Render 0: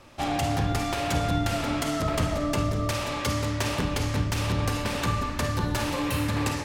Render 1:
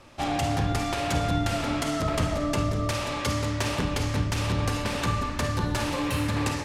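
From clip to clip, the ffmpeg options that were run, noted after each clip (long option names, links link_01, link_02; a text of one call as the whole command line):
ffmpeg -i in.wav -af "lowpass=12000" out.wav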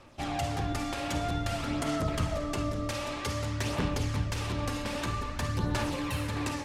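ffmpeg -i in.wav -af "aphaser=in_gain=1:out_gain=1:delay=3.7:decay=0.35:speed=0.52:type=sinusoidal,volume=-6dB" out.wav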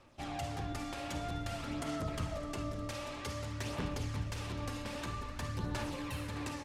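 ffmpeg -i in.wav -af "aecho=1:1:611:0.126,volume=-7.5dB" out.wav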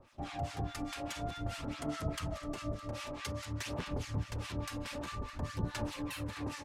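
ffmpeg -i in.wav -filter_complex "[0:a]acrossover=split=1000[link_01][link_02];[link_01]aeval=exprs='val(0)*(1-1/2+1/2*cos(2*PI*4.8*n/s))':channel_layout=same[link_03];[link_02]aeval=exprs='val(0)*(1-1/2-1/2*cos(2*PI*4.8*n/s))':channel_layout=same[link_04];[link_03][link_04]amix=inputs=2:normalize=0,volume=4.5dB" out.wav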